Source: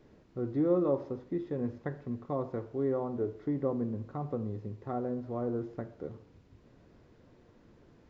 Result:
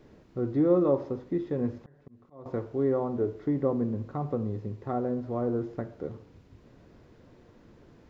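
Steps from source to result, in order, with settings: 1.58–2.46 s: slow attack 744 ms; trim +4.5 dB

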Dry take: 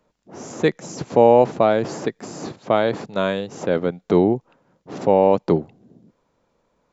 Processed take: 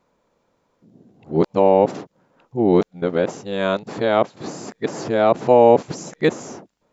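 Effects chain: reverse the whole clip; bass shelf 87 Hz -6 dB; trim +1 dB

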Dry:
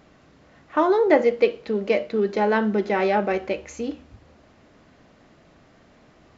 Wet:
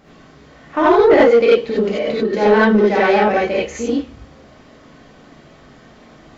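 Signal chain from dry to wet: 1.68–2.25 s: compressor with a negative ratio -25 dBFS, ratio -0.5; gated-style reverb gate 110 ms rising, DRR -7 dB; saturation -6 dBFS, distortion -16 dB; trim +2 dB

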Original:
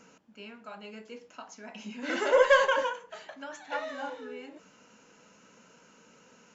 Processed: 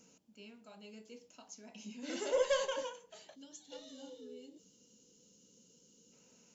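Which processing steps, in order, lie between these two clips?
treble shelf 2.5 kHz +8 dB; time-frequency box 3.35–6.13 s, 550–2800 Hz -12 dB; peaking EQ 1.5 kHz -15 dB 1.9 oct; trim -5.5 dB

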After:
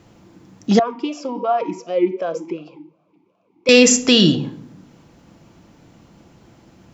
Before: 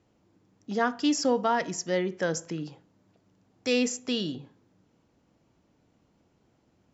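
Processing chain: peaking EQ 470 Hz -3 dB 1.2 oct; reverberation RT60 0.70 s, pre-delay 6 ms, DRR 10.5 dB; loudness maximiser +19.5 dB; 0.79–3.69 s: talking filter a-u 2.7 Hz; trim -1 dB

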